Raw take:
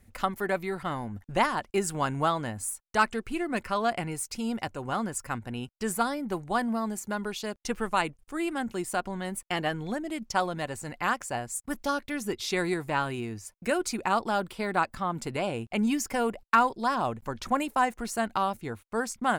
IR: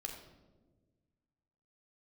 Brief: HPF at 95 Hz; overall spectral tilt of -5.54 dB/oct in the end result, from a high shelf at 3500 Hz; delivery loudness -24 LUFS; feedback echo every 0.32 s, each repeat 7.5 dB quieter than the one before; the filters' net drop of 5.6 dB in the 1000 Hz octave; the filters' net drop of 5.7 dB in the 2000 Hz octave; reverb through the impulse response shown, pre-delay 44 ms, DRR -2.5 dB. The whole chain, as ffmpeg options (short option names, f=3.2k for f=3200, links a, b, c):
-filter_complex "[0:a]highpass=95,equalizer=f=1k:t=o:g=-6,equalizer=f=2k:t=o:g=-3.5,highshelf=f=3.5k:g=-6.5,aecho=1:1:320|640|960|1280|1600:0.422|0.177|0.0744|0.0312|0.0131,asplit=2[a][b];[1:a]atrim=start_sample=2205,adelay=44[c];[b][c]afir=irnorm=-1:irlink=0,volume=4dB[d];[a][d]amix=inputs=2:normalize=0,volume=3.5dB"